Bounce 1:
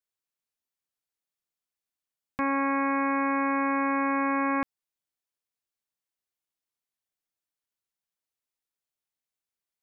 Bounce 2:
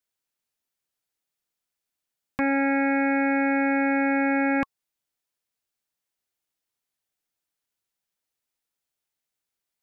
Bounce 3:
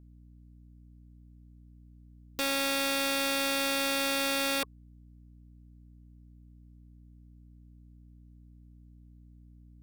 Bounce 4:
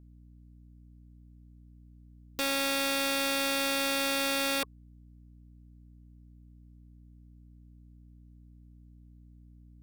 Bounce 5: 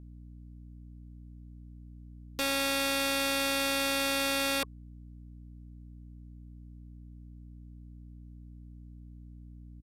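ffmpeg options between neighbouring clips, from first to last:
ffmpeg -i in.wav -af "acontrast=26,bandreject=frequency=1100:width=15" out.wav
ffmpeg -i in.wav -af "highpass=frequency=420:width_type=q:width=4.4,aeval=exprs='val(0)+0.00562*(sin(2*PI*60*n/s)+sin(2*PI*2*60*n/s)/2+sin(2*PI*3*60*n/s)/3+sin(2*PI*4*60*n/s)/4+sin(2*PI*5*60*n/s)/5)':channel_layout=same,aeval=exprs='(mod(6.31*val(0)+1,2)-1)/6.31':channel_layout=same,volume=-7.5dB" out.wav
ffmpeg -i in.wav -af anull out.wav
ffmpeg -i in.wav -af "aeval=exprs='val(0)+0.00224*(sin(2*PI*60*n/s)+sin(2*PI*2*60*n/s)/2+sin(2*PI*3*60*n/s)/3+sin(2*PI*4*60*n/s)/4+sin(2*PI*5*60*n/s)/5)':channel_layout=same,aresample=32000,aresample=44100" out.wav

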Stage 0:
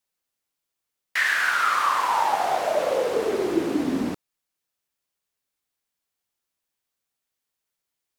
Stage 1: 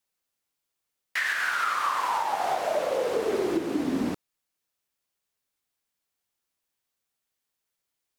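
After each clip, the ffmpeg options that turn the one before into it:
ffmpeg -i in.wav -af "alimiter=limit=-17dB:level=0:latency=1:release=354" out.wav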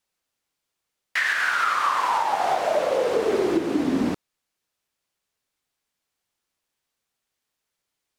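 ffmpeg -i in.wav -af "highshelf=frequency=11000:gain=-9.5,volume=4.5dB" out.wav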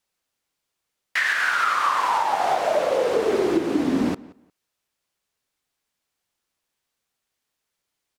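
ffmpeg -i in.wav -filter_complex "[0:a]asplit=2[link_01][link_02];[link_02]adelay=177,lowpass=frequency=3200:poles=1,volume=-21dB,asplit=2[link_03][link_04];[link_04]adelay=177,lowpass=frequency=3200:poles=1,volume=0.21[link_05];[link_01][link_03][link_05]amix=inputs=3:normalize=0,volume=1dB" out.wav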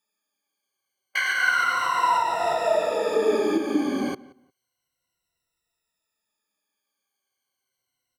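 ffmpeg -i in.wav -af "afftfilt=real='re*pow(10,23/40*sin(2*PI*(2*log(max(b,1)*sr/1024/100)/log(2)-(-0.31)*(pts-256)/sr)))':imag='im*pow(10,23/40*sin(2*PI*(2*log(max(b,1)*sr/1024/100)/log(2)-(-0.31)*(pts-256)/sr)))':win_size=1024:overlap=0.75,volume=-6.5dB" out.wav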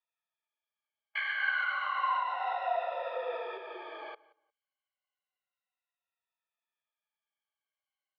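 ffmpeg -i in.wav -af "highpass=frequency=510:width_type=q:width=0.5412,highpass=frequency=510:width_type=q:width=1.307,lowpass=frequency=3500:width_type=q:width=0.5176,lowpass=frequency=3500:width_type=q:width=0.7071,lowpass=frequency=3500:width_type=q:width=1.932,afreqshift=65,volume=-9dB" out.wav

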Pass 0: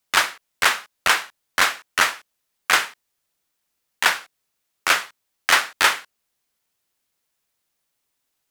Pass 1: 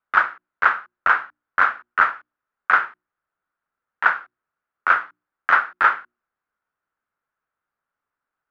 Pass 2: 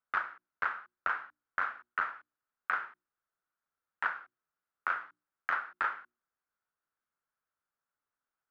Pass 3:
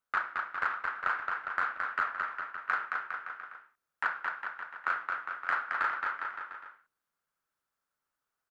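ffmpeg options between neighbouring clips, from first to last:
ffmpeg -i in.wav -af "lowpass=frequency=1400:width_type=q:width=4.1,bandreject=frequency=60:width_type=h:width=6,bandreject=frequency=120:width_type=h:width=6,bandreject=frequency=180:width_type=h:width=6,bandreject=frequency=240:width_type=h:width=6,bandreject=frequency=300:width_type=h:width=6,bandreject=frequency=360:width_type=h:width=6,volume=-5.5dB" out.wav
ffmpeg -i in.wav -af "acompressor=threshold=-20dB:ratio=6,volume=-8.5dB" out.wav
ffmpeg -i in.wav -filter_complex "[0:a]aecho=1:1:220|407|566|701.1|815.9:0.631|0.398|0.251|0.158|0.1,asplit=2[link_01][link_02];[link_02]asoftclip=type=tanh:threshold=-30.5dB,volume=-11.5dB[link_03];[link_01][link_03]amix=inputs=2:normalize=0" out.wav

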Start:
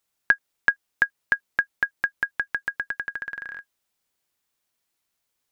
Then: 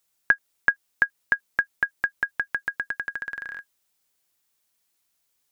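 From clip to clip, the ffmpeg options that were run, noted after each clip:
ffmpeg -i in.wav -filter_complex "[0:a]acrossover=split=2500[link_01][link_02];[link_02]acompressor=threshold=-46dB:ratio=4:attack=1:release=60[link_03];[link_01][link_03]amix=inputs=2:normalize=0,highshelf=frequency=4300:gain=6.5" out.wav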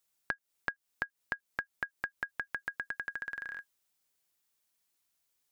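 ffmpeg -i in.wav -af "acompressor=threshold=-27dB:ratio=6,volume=-5.5dB" out.wav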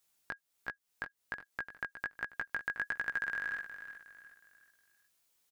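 ffmpeg -i in.wav -af "alimiter=limit=-24dB:level=0:latency=1:release=423,flanger=delay=16:depth=4:speed=1.3,aecho=1:1:364|728|1092|1456:0.282|0.107|0.0407|0.0155,volume=7dB" out.wav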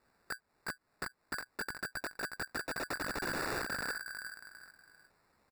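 ffmpeg -i in.wav -af "alimiter=level_in=6dB:limit=-24dB:level=0:latency=1:release=97,volume=-6dB,aresample=11025,aeval=exprs='(mod(141*val(0)+1,2)-1)/141':channel_layout=same,aresample=44100,acrusher=samples=14:mix=1:aa=0.000001,volume=11.5dB" out.wav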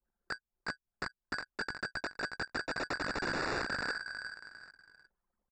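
ffmpeg -i in.wav -af "acrusher=bits=5:mode=log:mix=0:aa=0.000001,anlmdn=0.00001,aresample=16000,aresample=44100,volume=2dB" out.wav

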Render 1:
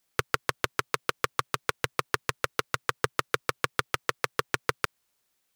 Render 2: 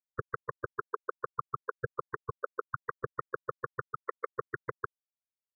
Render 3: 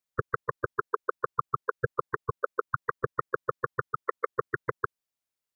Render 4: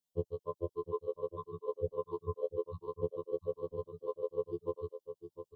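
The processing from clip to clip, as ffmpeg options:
ffmpeg -i in.wav -af "afftfilt=real='re*gte(hypot(re,im),0.178)':imag='im*gte(hypot(re,im),0.178)':win_size=1024:overlap=0.75,lowpass=frequency=1100:poles=1,alimiter=limit=-21dB:level=0:latency=1:release=271,volume=3.5dB" out.wav
ffmpeg -i in.wav -af "acontrast=38,volume=1dB" out.wav
ffmpeg -i in.wav -af "asuperstop=centerf=1700:order=20:qfactor=0.93,aecho=1:1:707:0.316,afftfilt=real='re*2*eq(mod(b,4),0)':imag='im*2*eq(mod(b,4),0)':win_size=2048:overlap=0.75,volume=1dB" out.wav

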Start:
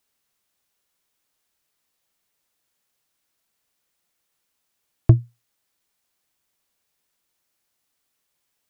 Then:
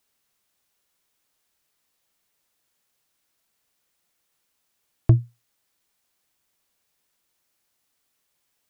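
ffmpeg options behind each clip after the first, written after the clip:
ffmpeg -i in.wav -af "alimiter=level_in=6.5dB:limit=-1dB:release=50:level=0:latency=1,volume=-5dB" out.wav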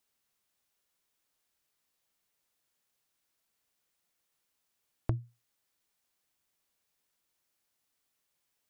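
ffmpeg -i in.wav -af "acompressor=threshold=-22dB:ratio=5,volume=-6.5dB" out.wav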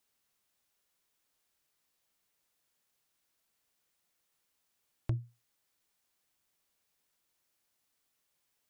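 ffmpeg -i in.wav -af "asoftclip=type=tanh:threshold=-24dB,volume=1dB" out.wav

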